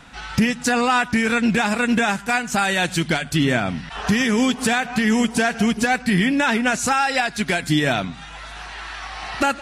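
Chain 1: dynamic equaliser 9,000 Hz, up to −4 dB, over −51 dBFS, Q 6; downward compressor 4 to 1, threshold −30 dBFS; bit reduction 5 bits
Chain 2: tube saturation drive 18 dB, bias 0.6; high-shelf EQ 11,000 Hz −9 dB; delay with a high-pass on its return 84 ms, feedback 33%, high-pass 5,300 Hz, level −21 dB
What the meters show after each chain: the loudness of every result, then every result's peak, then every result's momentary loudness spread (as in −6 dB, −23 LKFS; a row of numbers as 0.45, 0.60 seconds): −29.5, −24.5 LKFS; −17.5, −15.0 dBFS; 5, 11 LU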